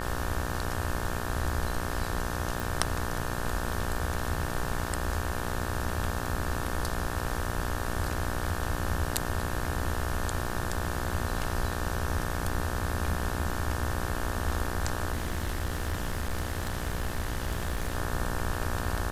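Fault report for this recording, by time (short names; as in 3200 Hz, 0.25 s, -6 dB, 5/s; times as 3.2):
buzz 60 Hz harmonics 30 -35 dBFS
2.6 pop
15.13–17.95 clipped -25.5 dBFS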